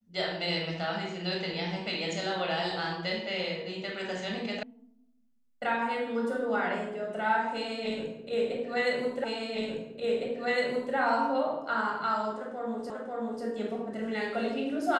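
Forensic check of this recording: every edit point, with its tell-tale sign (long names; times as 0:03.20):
0:04.63: cut off before it has died away
0:09.24: the same again, the last 1.71 s
0:12.90: the same again, the last 0.54 s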